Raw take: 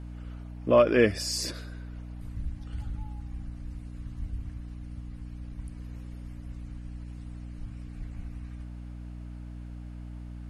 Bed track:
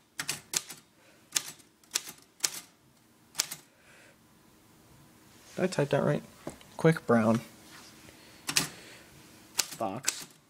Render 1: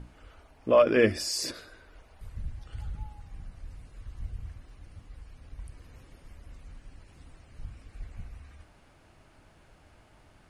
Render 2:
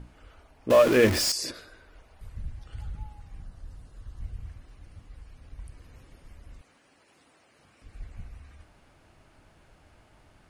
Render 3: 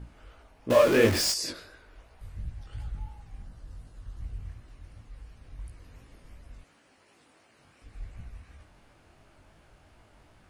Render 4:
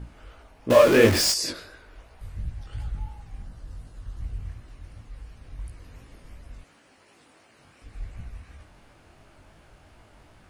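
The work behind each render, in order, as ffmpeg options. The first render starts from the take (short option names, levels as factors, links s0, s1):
-af "bandreject=f=60:t=h:w=6,bandreject=f=120:t=h:w=6,bandreject=f=180:t=h:w=6,bandreject=f=240:t=h:w=6,bandreject=f=300:t=h:w=6,bandreject=f=360:t=h:w=6"
-filter_complex "[0:a]asettb=1/sr,asplit=3[s0][s1][s2];[s0]atrim=end=0.704[s3];[s1]atrim=start=0.7:end=1.32,asetpts=PTS-STARTPTS,afade=t=in:d=0.004:c=qsin,afade=t=out:st=0.616:d=0.004:c=qsin,aeval=exprs='val(0)+0.5*0.0668*sgn(val(0))':c=same[s4];[s2]atrim=start=1.316[s5];[s3][s4]acrossfade=d=0.004:c1=hsin:c2=qsin[s6];[s6][s5]acrossfade=d=0.004:c1=qsin:c2=hsin,asettb=1/sr,asplit=3[s7][s8][s9];[s7]atrim=end=3.424[s10];[s8]atrim=start=3.42:end=4.21,asetpts=PTS-STARTPTS,afade=t=in:d=0.004:c=qsin,afade=t=out:st=0.786:d=0.004:c=qsin,equalizer=f=2300:w=3.4:g=-8.5[s11];[s9]atrim=start=4.206[s12];[s10][s11]acrossfade=d=0.004:c1=hsin:c2=qsin[s13];[s13][s12]acrossfade=d=0.004:c1=qsin:c2=hsin,asettb=1/sr,asplit=3[s14][s15][s16];[s14]atrim=end=6.614[s17];[s15]atrim=start=6.61:end=7.82,asetpts=PTS-STARTPTS,afade=t=in:d=0.004:c=qsin,afade=t=out:st=1.206:d=0.004:c=qsin,highpass=330[s18];[s16]atrim=start=7.816[s19];[s17][s18]acrossfade=d=0.004:c1=hsin:c2=qsin[s20];[s20][s19]acrossfade=d=0.004:c1=qsin:c2=hsin"
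-filter_complex "[0:a]asplit=2[s0][s1];[s1]asoftclip=type=tanh:threshold=0.075,volume=0.398[s2];[s0][s2]amix=inputs=2:normalize=0,flanger=delay=17:depth=6:speed=2.8"
-af "volume=1.68"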